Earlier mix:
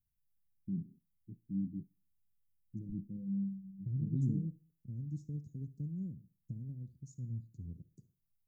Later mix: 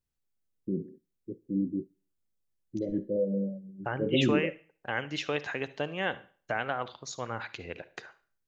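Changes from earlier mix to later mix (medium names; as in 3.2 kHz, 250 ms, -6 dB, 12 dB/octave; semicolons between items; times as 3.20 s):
second voice -4.5 dB; master: remove inverse Chebyshev band-stop 830–3000 Hz, stop band 80 dB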